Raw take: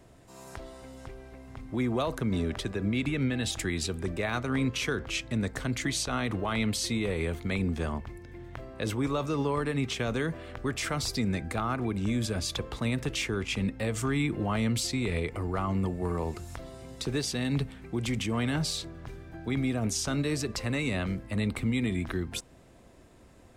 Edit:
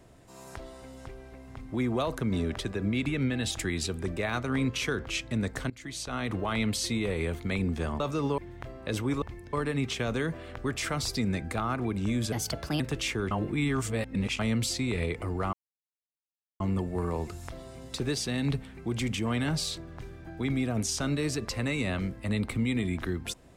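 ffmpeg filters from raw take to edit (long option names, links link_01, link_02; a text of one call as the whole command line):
ffmpeg -i in.wav -filter_complex "[0:a]asplit=11[link_01][link_02][link_03][link_04][link_05][link_06][link_07][link_08][link_09][link_10][link_11];[link_01]atrim=end=5.7,asetpts=PTS-STARTPTS,afade=type=out:start_time=5.696:duration=0.004:curve=hsin:silence=0.0749894[link_12];[link_02]atrim=start=5.7:end=8.002,asetpts=PTS-STARTPTS,afade=type=in:duration=0.67:silence=0.0749894[link_13];[link_03]atrim=start=9.148:end=9.532[link_14];[link_04]atrim=start=8.308:end=9.152[link_15];[link_05]atrim=start=7.998:end=8.312[link_16];[link_06]atrim=start=9.528:end=12.324[link_17];[link_07]atrim=start=12.32:end=12.94,asetpts=PTS-STARTPTS,asetrate=56889,aresample=44100,atrim=end_sample=21195,asetpts=PTS-STARTPTS[link_18];[link_08]atrim=start=12.936:end=13.452[link_19];[link_09]atrim=start=13.448:end=14.532,asetpts=PTS-STARTPTS,areverse[link_20];[link_10]atrim=start=14.528:end=15.67,asetpts=PTS-STARTPTS,afade=type=out:start_time=1.138:duration=0.004:curve=hsin,apad=pad_dur=1.07[link_21];[link_11]atrim=start=15.67,asetpts=PTS-STARTPTS,afade=type=in:duration=0.004:curve=hsin[link_22];[link_12][link_13]concat=n=2:v=0:a=1[link_23];[link_23][link_14]acrossfade=duration=0.004:curve1=hsin:curve2=hsin[link_24];[link_24][link_15]acrossfade=duration=0.004:curve1=hsin:curve2=hsin[link_25];[link_25][link_16]acrossfade=duration=0.004:curve1=hsin:curve2=hsin[link_26];[link_26][link_17]acrossfade=duration=0.004:curve1=hsin:curve2=hsin[link_27];[link_27][link_18]acrossfade=duration=0.004:curve1=hsin:curve2=hsin[link_28];[link_28][link_19]acrossfade=duration=0.004:curve1=hsin:curve2=hsin[link_29];[link_29][link_20]acrossfade=duration=0.004:curve1=hsin:curve2=hsin[link_30];[link_21][link_22]concat=n=2:v=0:a=1[link_31];[link_30][link_31]acrossfade=duration=0.004:curve1=hsin:curve2=hsin" out.wav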